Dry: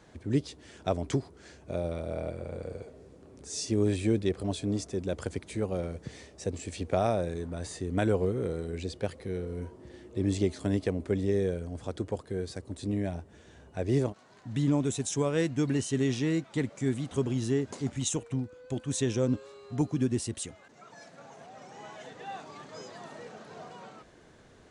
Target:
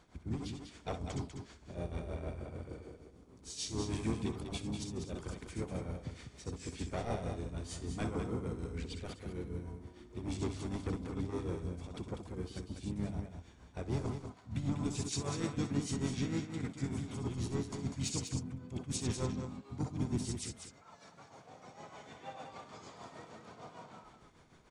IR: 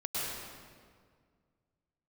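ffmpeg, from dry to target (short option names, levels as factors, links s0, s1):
-filter_complex "[0:a]acrossover=split=3800[s0][s1];[s0]asoftclip=type=tanh:threshold=0.0631[s2];[s2][s1]amix=inputs=2:normalize=0,aecho=1:1:0.9:0.41,bandreject=f=99.37:t=h:w=4,bandreject=f=198.74:t=h:w=4,bandreject=f=298.11:t=h:w=4,bandreject=f=397.48:t=h:w=4,bandreject=f=496.85:t=h:w=4[s3];[1:a]atrim=start_sample=2205,afade=t=out:st=0.15:d=0.01,atrim=end_sample=7056,asetrate=70560,aresample=44100[s4];[s3][s4]afir=irnorm=-1:irlink=0,aeval=exprs='0.0473*(abs(mod(val(0)/0.0473+3,4)-2)-1)':c=same,asplit=4[s5][s6][s7][s8];[s6]asetrate=29433,aresample=44100,atempo=1.49831,volume=0.562[s9];[s7]asetrate=35002,aresample=44100,atempo=1.25992,volume=0.398[s10];[s8]asetrate=52444,aresample=44100,atempo=0.840896,volume=0.126[s11];[s5][s9][s10][s11]amix=inputs=4:normalize=0,tremolo=f=6.6:d=0.67,aecho=1:1:196:0.447,volume=1.19"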